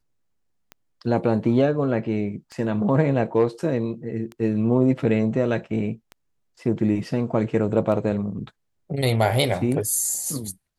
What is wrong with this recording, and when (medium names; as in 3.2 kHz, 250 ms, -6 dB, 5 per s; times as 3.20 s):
tick 33 1/3 rpm -22 dBFS